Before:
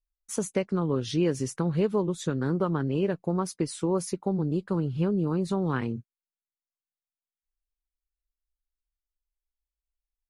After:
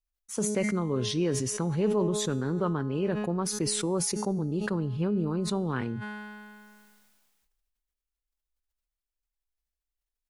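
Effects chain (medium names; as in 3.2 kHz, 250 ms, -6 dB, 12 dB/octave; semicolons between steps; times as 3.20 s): feedback comb 210 Hz, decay 1.3 s, mix 70%; decay stretcher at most 27 dB/s; trim +7 dB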